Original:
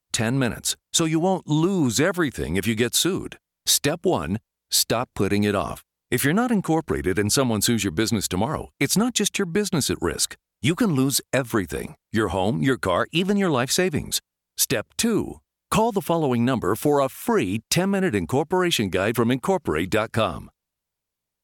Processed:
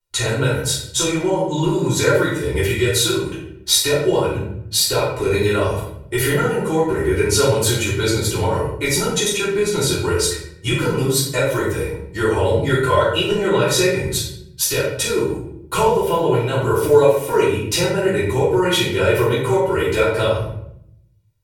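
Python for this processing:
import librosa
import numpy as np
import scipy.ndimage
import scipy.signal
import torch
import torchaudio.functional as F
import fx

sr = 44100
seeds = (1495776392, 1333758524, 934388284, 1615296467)

y = x + 0.93 * np.pad(x, (int(2.1 * sr / 1000.0), 0))[:len(x)]
y = fx.room_shoebox(y, sr, seeds[0], volume_m3=160.0, walls='mixed', distance_m=3.3)
y = y * librosa.db_to_amplitude(-9.0)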